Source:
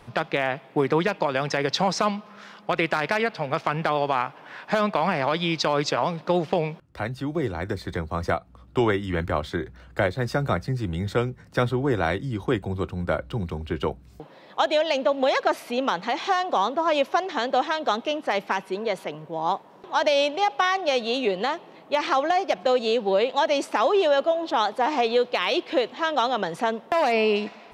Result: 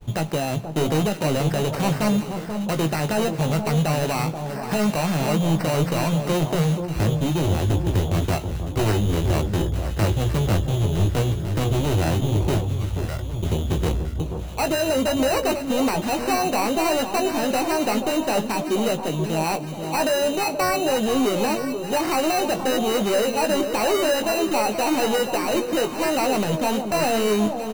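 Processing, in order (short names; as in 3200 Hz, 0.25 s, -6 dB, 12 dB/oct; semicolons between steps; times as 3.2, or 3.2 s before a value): expander -45 dBFS; tilt -4.5 dB/oct; resonator 120 Hz, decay 0.86 s, harmonics odd, mix 30%; in parallel at -2 dB: limiter -19.5 dBFS, peak gain reduction 13.5 dB; 12.61–13.43 on the sum: passive tone stack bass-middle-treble 10-0-10; sample-and-hold 13×; hard clip -19.5 dBFS, distortion -8 dB; doubler 19 ms -8 dB; echo with dull and thin repeats by turns 0.482 s, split 1100 Hz, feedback 65%, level -7 dB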